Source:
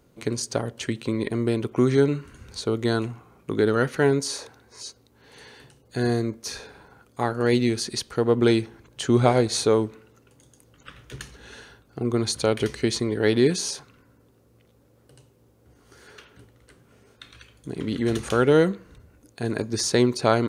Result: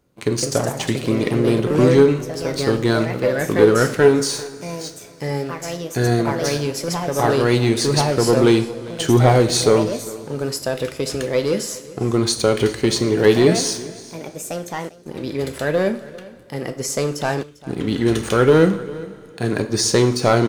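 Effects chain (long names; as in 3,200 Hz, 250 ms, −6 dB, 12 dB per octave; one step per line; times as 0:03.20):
leveller curve on the samples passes 2
coupled-rooms reverb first 0.54 s, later 3.6 s, from −18 dB, DRR 7 dB
delay with pitch and tempo change per echo 203 ms, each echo +3 semitones, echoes 2, each echo −6 dB
on a send: single-tap delay 398 ms −20 dB
on the sum: level −1.5 dB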